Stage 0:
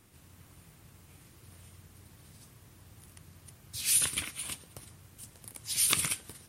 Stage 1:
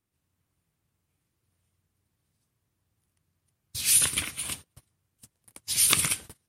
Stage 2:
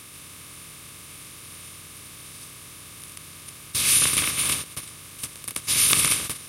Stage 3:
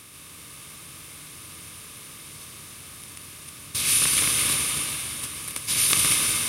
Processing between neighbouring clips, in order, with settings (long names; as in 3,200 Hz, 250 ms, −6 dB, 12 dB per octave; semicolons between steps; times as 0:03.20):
noise gate −44 dBFS, range −27 dB; level +5 dB
compressor on every frequency bin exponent 0.4; level −1 dB
dense smooth reverb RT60 4.3 s, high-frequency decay 0.85×, pre-delay 105 ms, DRR 0 dB; level −2.5 dB